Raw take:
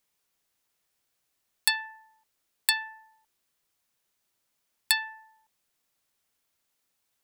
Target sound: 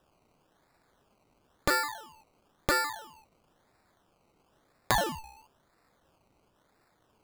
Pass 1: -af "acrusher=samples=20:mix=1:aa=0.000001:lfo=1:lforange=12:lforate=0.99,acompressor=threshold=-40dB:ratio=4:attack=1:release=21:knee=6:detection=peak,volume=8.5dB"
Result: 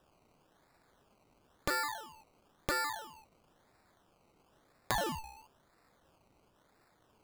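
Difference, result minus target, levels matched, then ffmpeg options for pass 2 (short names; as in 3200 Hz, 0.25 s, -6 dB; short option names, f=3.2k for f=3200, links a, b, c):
compressor: peak gain reduction +7 dB
-af "acrusher=samples=20:mix=1:aa=0.000001:lfo=1:lforange=12:lforate=0.99,acompressor=threshold=-30.5dB:ratio=4:attack=1:release=21:knee=6:detection=peak,volume=8.5dB"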